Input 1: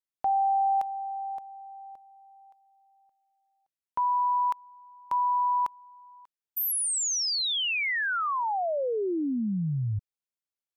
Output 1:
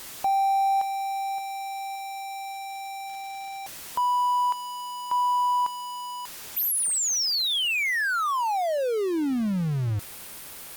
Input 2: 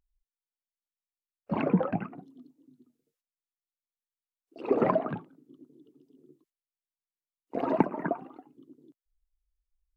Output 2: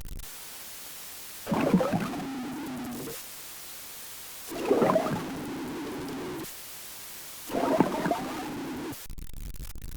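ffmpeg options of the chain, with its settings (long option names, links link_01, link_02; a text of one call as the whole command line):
ffmpeg -i in.wav -af "aeval=exprs='val(0)+0.5*0.0316*sgn(val(0))':channel_layout=same" -ar 48000 -c:a libopus -b:a 48k out.opus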